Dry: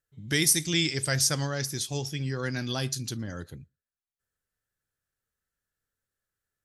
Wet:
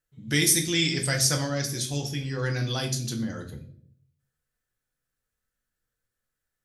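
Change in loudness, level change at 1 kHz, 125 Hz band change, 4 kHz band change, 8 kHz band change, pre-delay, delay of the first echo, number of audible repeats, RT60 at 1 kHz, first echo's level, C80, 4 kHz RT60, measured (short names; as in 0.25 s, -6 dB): +2.0 dB, +1.5 dB, +2.5 dB, +2.0 dB, +1.5 dB, 4 ms, none, none, 0.45 s, none, 14.5 dB, 0.45 s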